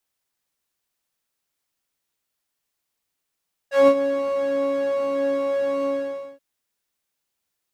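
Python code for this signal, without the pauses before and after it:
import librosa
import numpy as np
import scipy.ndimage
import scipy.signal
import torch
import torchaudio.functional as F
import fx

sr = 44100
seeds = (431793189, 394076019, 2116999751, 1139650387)

y = fx.sub_patch_pwm(sr, seeds[0], note=73, wave2='saw', interval_st=-12, detune_cents=10, level2_db=-9.0, sub_db=-15.0, noise_db=-8, kind='bandpass', cutoff_hz=280.0, q=0.76, env_oct=2.5, env_decay_s=0.12, env_sustain_pct=10, attack_ms=161.0, decay_s=0.07, sustain_db=-12.0, release_s=0.55, note_s=2.13, lfo_hz=1.3, width_pct=48, width_swing_pct=17)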